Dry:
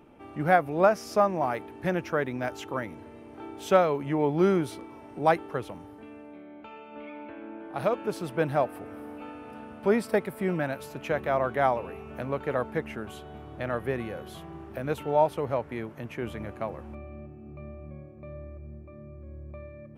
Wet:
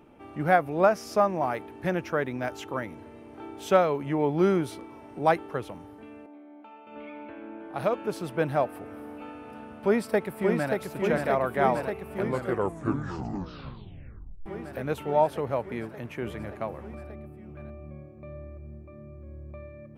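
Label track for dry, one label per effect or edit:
6.260000	6.870000	rippled Chebyshev high-pass 200 Hz, ripple 9 dB
9.630000	10.740000	echo throw 580 ms, feedback 80%, level -4 dB
12.170000	12.170000	tape stop 2.29 s

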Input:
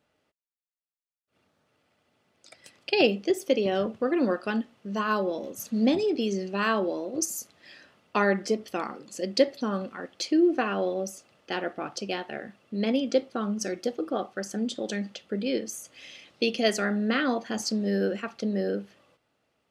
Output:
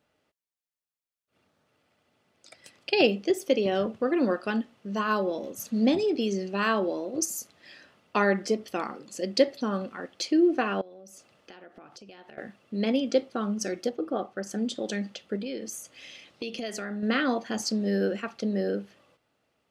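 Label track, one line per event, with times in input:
10.810000	12.380000	compression 12:1, threshold -44 dBFS
13.890000	14.470000	treble shelf 2.2 kHz -8 dB
15.360000	17.030000	compression 5:1, threshold -31 dBFS

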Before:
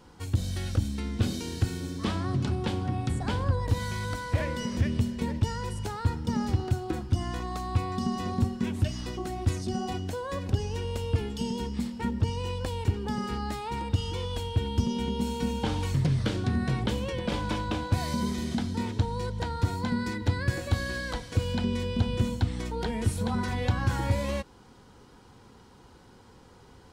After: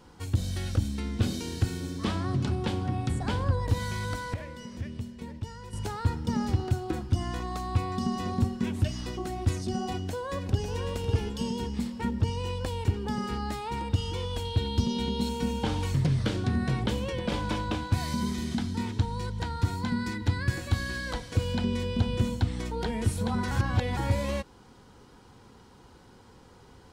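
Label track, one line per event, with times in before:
4.340000	5.730000	gain -10 dB
10.080000	10.740000	echo throw 550 ms, feedback 30%, level -6.5 dB
14.450000	15.290000	peaking EQ 4 kHz +13 dB 0.31 oct
17.750000	21.070000	peaking EQ 550 Hz -7 dB
23.510000	23.970000	reverse

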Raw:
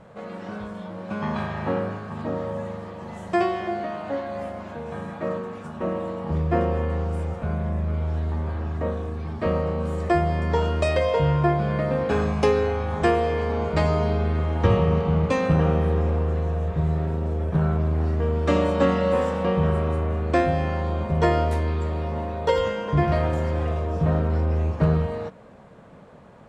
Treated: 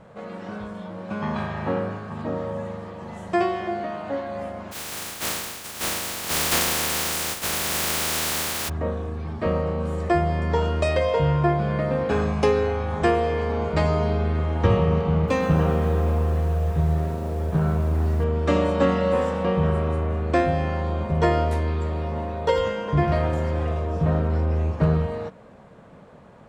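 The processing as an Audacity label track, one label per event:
4.710000	8.680000	spectral contrast reduction exponent 0.13
15.150000	18.240000	bit-crushed delay 129 ms, feedback 80%, word length 7-bit, level -13 dB

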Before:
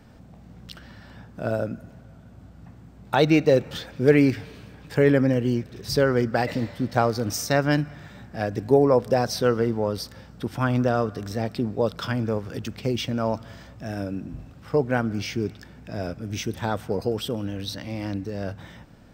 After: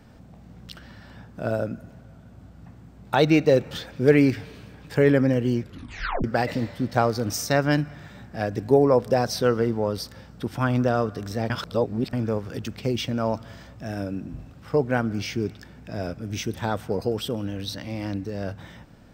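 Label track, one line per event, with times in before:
5.620000	5.620000	tape stop 0.62 s
11.500000	12.130000	reverse

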